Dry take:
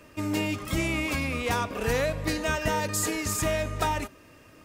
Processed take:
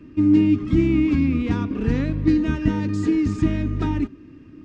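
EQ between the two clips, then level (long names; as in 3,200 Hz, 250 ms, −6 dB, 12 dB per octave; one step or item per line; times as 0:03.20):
Gaussian smoothing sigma 1.8 samples
low shelf with overshoot 420 Hz +11.5 dB, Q 3
−3.5 dB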